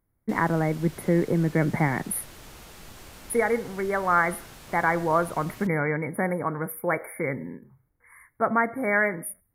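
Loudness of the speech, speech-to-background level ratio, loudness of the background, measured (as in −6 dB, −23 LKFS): −26.0 LKFS, 20.0 dB, −46.0 LKFS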